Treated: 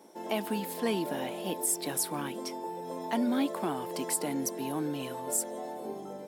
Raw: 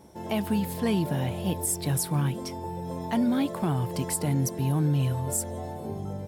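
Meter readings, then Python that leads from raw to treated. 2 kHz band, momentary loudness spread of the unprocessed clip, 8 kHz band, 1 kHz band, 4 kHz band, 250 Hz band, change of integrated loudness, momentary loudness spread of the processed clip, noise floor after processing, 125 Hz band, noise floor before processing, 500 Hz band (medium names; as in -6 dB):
-1.0 dB, 10 LU, -1.0 dB, -1.0 dB, -1.0 dB, -5.5 dB, -4.5 dB, 9 LU, -42 dBFS, -19.0 dB, -37 dBFS, -1.0 dB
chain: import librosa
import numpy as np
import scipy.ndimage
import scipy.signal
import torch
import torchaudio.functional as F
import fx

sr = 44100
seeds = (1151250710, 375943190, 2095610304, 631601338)

y = scipy.signal.sosfilt(scipy.signal.butter(4, 250.0, 'highpass', fs=sr, output='sos'), x)
y = F.gain(torch.from_numpy(y), -1.0).numpy()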